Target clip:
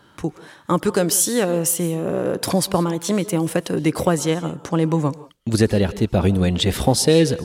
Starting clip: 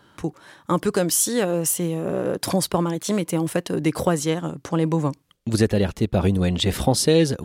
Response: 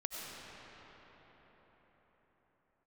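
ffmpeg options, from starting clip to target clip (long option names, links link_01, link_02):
-filter_complex "[0:a]asplit=2[link_01][link_02];[1:a]atrim=start_sample=2205,afade=type=out:start_time=0.18:duration=0.01,atrim=end_sample=8379,asetrate=30429,aresample=44100[link_03];[link_02][link_03]afir=irnorm=-1:irlink=0,volume=-9dB[link_04];[link_01][link_04]amix=inputs=2:normalize=0"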